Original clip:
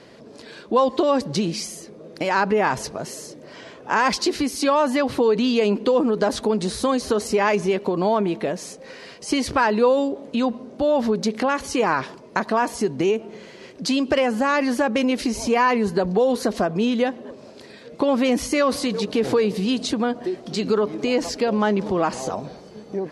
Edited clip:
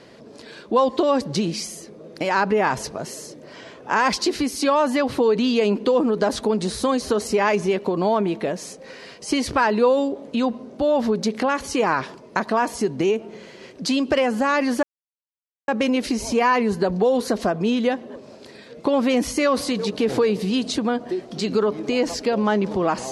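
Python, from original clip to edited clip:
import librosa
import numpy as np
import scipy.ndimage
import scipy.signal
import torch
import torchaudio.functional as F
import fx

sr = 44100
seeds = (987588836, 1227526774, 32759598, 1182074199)

y = fx.edit(x, sr, fx.insert_silence(at_s=14.83, length_s=0.85), tone=tone)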